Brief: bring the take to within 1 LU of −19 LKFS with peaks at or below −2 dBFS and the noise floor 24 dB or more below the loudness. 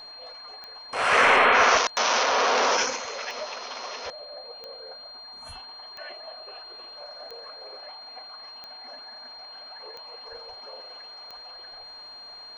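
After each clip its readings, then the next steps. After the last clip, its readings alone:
number of clicks 9; interfering tone 4,200 Hz; level of the tone −41 dBFS; integrated loudness −22.0 LKFS; sample peak −8.5 dBFS; target loudness −19.0 LKFS
→ click removal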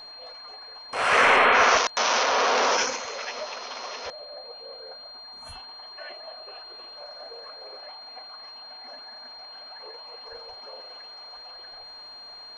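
number of clicks 0; interfering tone 4,200 Hz; level of the tone −41 dBFS
→ notch filter 4,200 Hz, Q 30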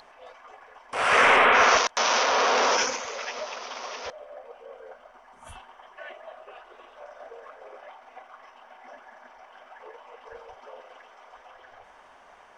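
interfering tone none found; integrated loudness −21.5 LKFS; sample peak −8.0 dBFS; target loudness −19.0 LKFS
→ level +2.5 dB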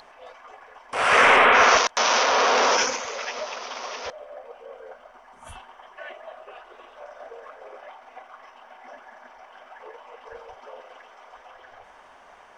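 integrated loudness −19.0 LKFS; sample peak −5.5 dBFS; background noise floor −51 dBFS

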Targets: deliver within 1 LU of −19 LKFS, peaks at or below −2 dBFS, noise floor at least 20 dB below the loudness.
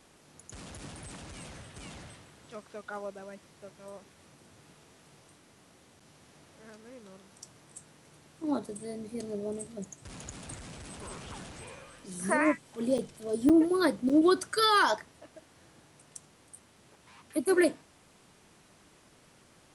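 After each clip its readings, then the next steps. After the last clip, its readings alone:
number of dropouts 3; longest dropout 6.2 ms; integrated loudness −29.0 LKFS; sample peak −14.5 dBFS; target loudness −19.0 LKFS
→ repair the gap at 0:12.98/0:13.49/0:14.09, 6.2 ms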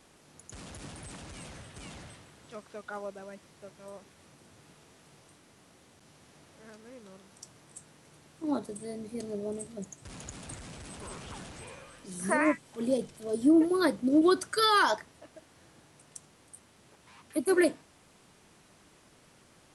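number of dropouts 0; integrated loudness −29.0 LKFS; sample peak −14.5 dBFS; target loudness −19.0 LKFS
→ level +10 dB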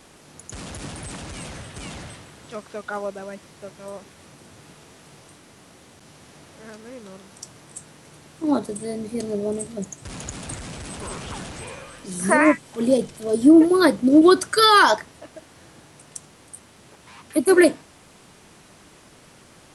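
integrated loudness −19.0 LKFS; sample peak −4.5 dBFS; background noise floor −51 dBFS

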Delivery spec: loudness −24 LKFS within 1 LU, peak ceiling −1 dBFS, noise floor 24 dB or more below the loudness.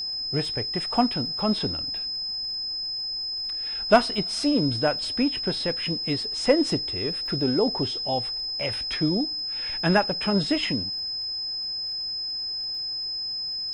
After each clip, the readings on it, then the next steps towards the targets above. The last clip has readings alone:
crackle rate 29 per second; interfering tone 5,100 Hz; level of the tone −28 dBFS; integrated loudness −25.0 LKFS; sample peak −6.5 dBFS; target loudness −24.0 LKFS
→ click removal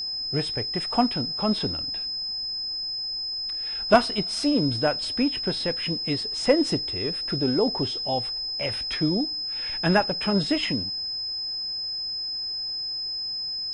crackle rate 0.29 per second; interfering tone 5,100 Hz; level of the tone −28 dBFS
→ notch filter 5,100 Hz, Q 30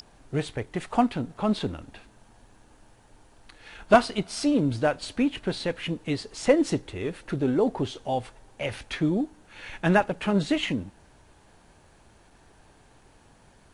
interfering tone none found; integrated loudness −26.5 LKFS; sample peak −4.0 dBFS; target loudness −24.0 LKFS
→ level +2.5 dB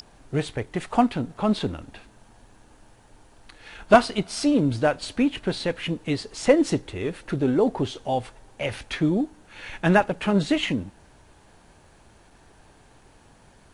integrated loudness −24.0 LKFS; sample peak −1.5 dBFS; background noise floor −55 dBFS

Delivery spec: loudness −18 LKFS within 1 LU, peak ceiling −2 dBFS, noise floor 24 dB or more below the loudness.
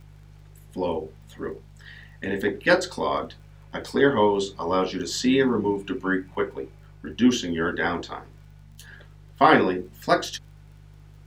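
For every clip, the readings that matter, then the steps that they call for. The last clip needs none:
crackle rate 27 per second; mains hum 50 Hz; hum harmonics up to 150 Hz; level of the hum −45 dBFS; integrated loudness −24.0 LKFS; sample peak −3.5 dBFS; target loudness −18.0 LKFS
→ click removal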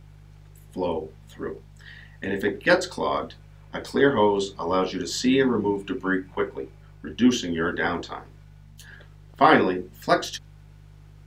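crackle rate 0 per second; mains hum 50 Hz; hum harmonics up to 150 Hz; level of the hum −45 dBFS
→ hum removal 50 Hz, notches 3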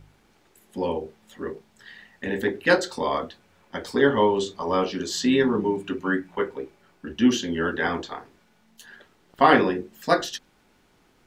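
mains hum none found; integrated loudness −24.0 LKFS; sample peak −3.5 dBFS; target loudness −18.0 LKFS
→ level +6 dB
brickwall limiter −2 dBFS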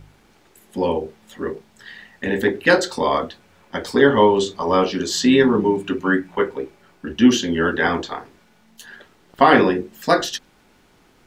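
integrated loudness −18.5 LKFS; sample peak −2.0 dBFS; background noise floor −56 dBFS

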